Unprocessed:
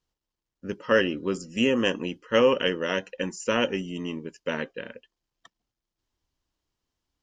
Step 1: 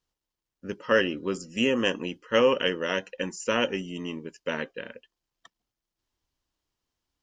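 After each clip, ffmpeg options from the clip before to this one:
-af "lowshelf=f=410:g=-3"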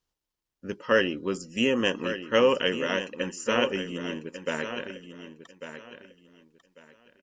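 -af "aecho=1:1:1146|2292|3438:0.299|0.0687|0.0158"

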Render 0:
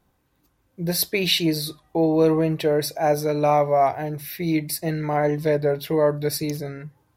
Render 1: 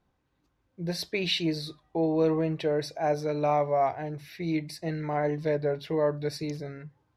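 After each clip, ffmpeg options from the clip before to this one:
-af "lowpass=5300,volume=0.473"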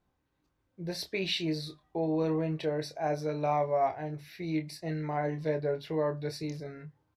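-filter_complex "[0:a]asplit=2[s0][s1];[s1]adelay=26,volume=0.398[s2];[s0][s2]amix=inputs=2:normalize=0,volume=0.631"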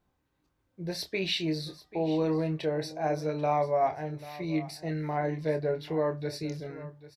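-af "aecho=1:1:789:0.141,volume=1.19"

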